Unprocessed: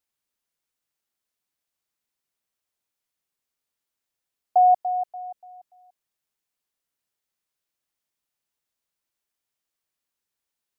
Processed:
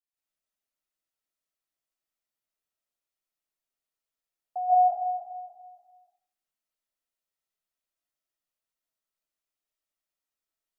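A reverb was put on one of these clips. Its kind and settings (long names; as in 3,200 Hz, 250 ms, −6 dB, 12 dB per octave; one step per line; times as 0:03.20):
comb and all-pass reverb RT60 0.55 s, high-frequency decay 0.4×, pre-delay 115 ms, DRR −9.5 dB
level −15.5 dB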